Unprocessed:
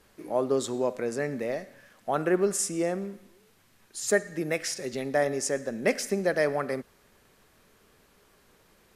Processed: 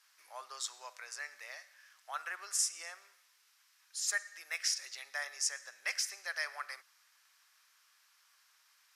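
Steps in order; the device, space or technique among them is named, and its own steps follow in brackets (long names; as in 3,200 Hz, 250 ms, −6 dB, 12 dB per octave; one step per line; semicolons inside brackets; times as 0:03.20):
headphones lying on a table (high-pass filter 1,100 Hz 24 dB per octave; parametric band 5,400 Hz +7.5 dB 0.54 octaves)
level −5 dB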